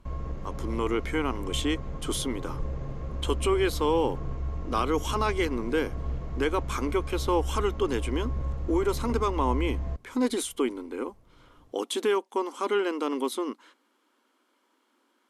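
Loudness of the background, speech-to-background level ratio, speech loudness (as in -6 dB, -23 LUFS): -35.5 LUFS, 6.0 dB, -29.5 LUFS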